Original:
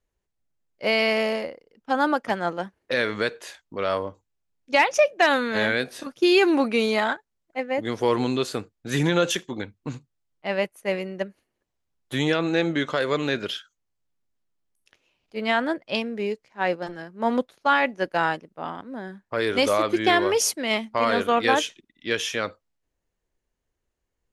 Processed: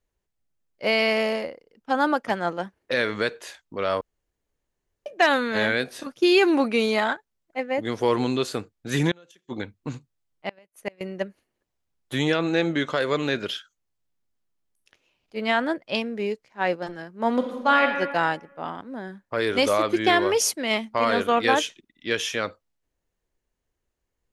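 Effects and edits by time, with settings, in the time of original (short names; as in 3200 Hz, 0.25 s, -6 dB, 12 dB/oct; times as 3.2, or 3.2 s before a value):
4.01–5.06 room tone
9.11–11.01 flipped gate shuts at -15 dBFS, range -31 dB
17.32–17.86 reverb throw, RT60 1.3 s, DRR 3 dB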